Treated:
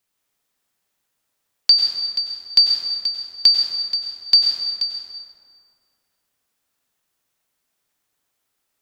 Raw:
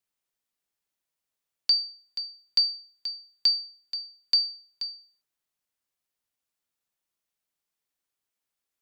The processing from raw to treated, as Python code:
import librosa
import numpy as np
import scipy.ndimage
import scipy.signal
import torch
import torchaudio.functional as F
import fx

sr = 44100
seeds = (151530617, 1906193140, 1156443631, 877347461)

y = fx.rev_plate(x, sr, seeds[0], rt60_s=2.4, hf_ratio=0.5, predelay_ms=85, drr_db=-1.0)
y = y * librosa.db_to_amplitude(9.0)